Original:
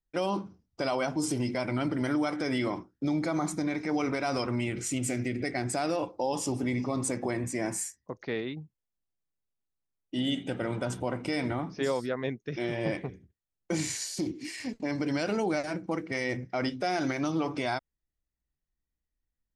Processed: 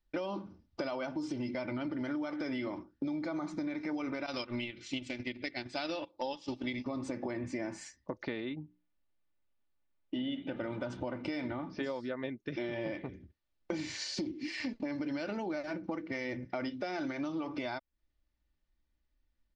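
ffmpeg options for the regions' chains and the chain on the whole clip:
-filter_complex "[0:a]asettb=1/sr,asplit=3[a][b][c];[a]atrim=end=4.264[d];[b]atrim=start=4.26:end=6.86,asetpts=PTS-STARTPTS,afade=t=in:d=0.004:c=qsin,afade=t=out:st=2.596:d=0.004:c=qsin,agate=range=-17dB:threshold=-30dB:ratio=16:release=100:detection=peak,equalizer=f=3.6k:t=o:w=1.3:g=14.5[e];[c]atrim=start=6.856[f];[d][e]acrossfade=d=0.004:c1=hsin:c2=qsin[g];[g][f]acrossfade=d=0.004:c1=qsin:c2=hsin,asettb=1/sr,asplit=3[h][i][j];[h]atrim=end=8.494[k];[i]atrim=start=8.49:end=10.56,asetpts=PTS-STARTPTS,afade=t=in:d=0.004:c=qsin,afade=t=out:st=2.066:d=0.004:c=qsin,lowpass=3.4k,bandreject=f=60:t=h:w=6,bandreject=f=120:t=h:w=6,bandreject=f=180:t=h:w=6,bandreject=f=240:t=h:w=6,bandreject=f=300:t=h:w=6,bandreject=f=360:t=h:w=6[l];[j]atrim=start=10.556[m];[k][l]acrossfade=d=0.004:c1=hsin:c2=qsin[n];[n][m]acrossfade=d=0.004:c1=qsin:c2=hsin,lowpass=f=4.9k:w=0.5412,lowpass=f=4.9k:w=1.3066,aecho=1:1:3.4:0.43,acompressor=threshold=-41dB:ratio=6,volume=6dB"

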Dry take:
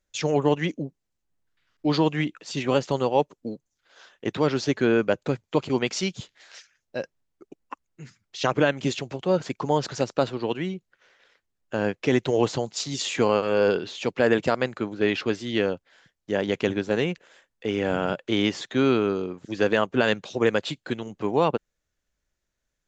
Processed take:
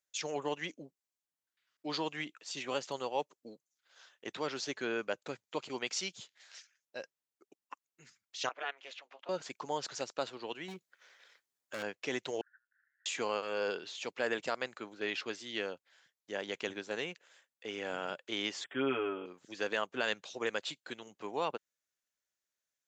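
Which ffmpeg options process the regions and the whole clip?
-filter_complex "[0:a]asettb=1/sr,asplit=3[a][b][c];[a]atrim=end=8.494[d];[b]atrim=start=8.49:end=9.29,asetpts=PTS-STARTPTS,afade=t=in:d=0.004:c=qsin,afade=t=out:st=0.796:d=0.004:c=qsin,aeval=exprs='val(0)*sin(2*PI*140*n/s)':c=same,highpass=750,lowpass=2.8k[e];[c]atrim=start=9.286[f];[d][e]acrossfade=d=0.004:c1=hsin:c2=qsin[g];[g][f]acrossfade=d=0.004:c1=qsin:c2=hsin,asettb=1/sr,asplit=3[h][i][j];[h]atrim=end=10.684[k];[i]atrim=start=10.68:end=11.83,asetpts=PTS-STARTPTS,afade=t=in:d=0.004:c=qsin,afade=t=out:st=1.146:d=0.004:c=qsin,bandreject=f=2.8k:w=14,acontrast=84,asoftclip=type=hard:threshold=-22dB[l];[j]atrim=start=11.826[m];[k][l]acrossfade=d=0.004:c1=hsin:c2=qsin[n];[n][m]acrossfade=d=0.004:c1=qsin:c2=hsin,asettb=1/sr,asplit=3[o][p][q];[o]atrim=end=12.414[r];[p]atrim=start=12.41:end=13.06,asetpts=PTS-STARTPTS,afade=t=in:d=0.004:c=qsin,afade=t=out:st=0.646:d=0.004:c=qsin,acompressor=threshold=-37dB:ratio=2:attack=3.2:release=140:knee=1:detection=peak,asuperpass=centerf=1600:order=8:qfactor=4.1[s];[q]atrim=start=13.056[t];[r][s]acrossfade=d=0.004:c1=hsin:c2=qsin[u];[u][t]acrossfade=d=0.004:c1=qsin:c2=hsin,asettb=1/sr,asplit=3[v][w][x];[v]atrim=end=18.644[y];[w]atrim=start=18.64:end=19.26,asetpts=PTS-STARTPTS,afade=t=in:d=0.004:c=qsin,afade=t=out:st=0.616:d=0.004:c=qsin,acrossover=split=3600[z][aa];[aa]acompressor=threshold=-51dB:ratio=4:attack=1:release=60[ab];[z][ab]amix=inputs=2:normalize=0,asuperstop=centerf=5200:order=20:qfactor=1.2,aecho=1:1:7.1:0.92,atrim=end_sample=27342[ac];[x]atrim=start=19.256[ad];[y][ac]acrossfade=d=0.004:c1=hsin:c2=qsin[ae];[ae][ad]acrossfade=d=0.004:c1=qsin:c2=hsin,highpass=f=810:p=1,highshelf=f=6.1k:g=7,volume=-8.5dB"

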